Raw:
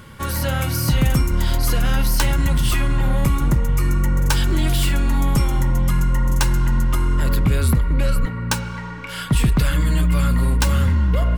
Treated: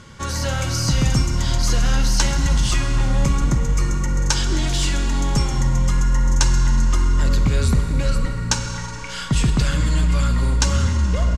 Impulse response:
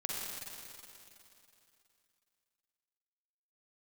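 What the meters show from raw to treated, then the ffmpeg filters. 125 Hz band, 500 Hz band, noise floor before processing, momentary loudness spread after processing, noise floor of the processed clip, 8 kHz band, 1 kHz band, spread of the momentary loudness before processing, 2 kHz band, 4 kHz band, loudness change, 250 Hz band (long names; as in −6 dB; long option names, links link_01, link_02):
−1.0 dB, −1.0 dB, −30 dBFS, 4 LU, −29 dBFS, +4.0 dB, −1.0 dB, 4 LU, −1.0 dB, +2.5 dB, −0.5 dB, −1.5 dB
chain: -filter_complex "[0:a]firequalizer=gain_entry='entry(2700,0);entry(6500,10);entry(9600,-6);entry(16000,-27)':delay=0.05:min_phase=1,asplit=2[link_01][link_02];[1:a]atrim=start_sample=2205[link_03];[link_02][link_03]afir=irnorm=-1:irlink=0,volume=-6dB[link_04];[link_01][link_04]amix=inputs=2:normalize=0,volume=-4.5dB"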